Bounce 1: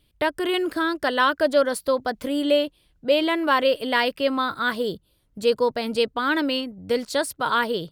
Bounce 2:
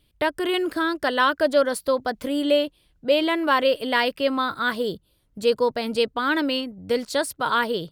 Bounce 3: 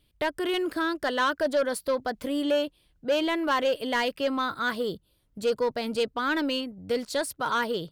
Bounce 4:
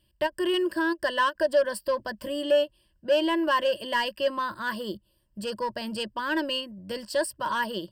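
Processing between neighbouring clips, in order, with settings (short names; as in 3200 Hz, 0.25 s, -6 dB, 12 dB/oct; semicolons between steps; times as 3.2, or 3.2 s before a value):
nothing audible
soft clip -14.5 dBFS, distortion -16 dB; gain -3 dB
ripple EQ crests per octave 1.3, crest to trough 14 dB; ending taper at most 580 dB/s; gain -3 dB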